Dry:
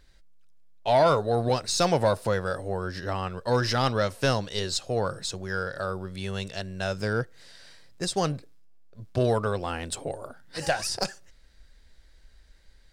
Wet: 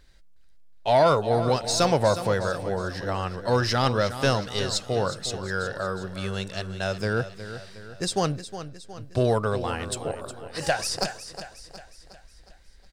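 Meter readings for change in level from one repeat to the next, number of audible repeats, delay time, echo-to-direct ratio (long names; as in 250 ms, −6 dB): −6.0 dB, 4, 363 ms, −11.0 dB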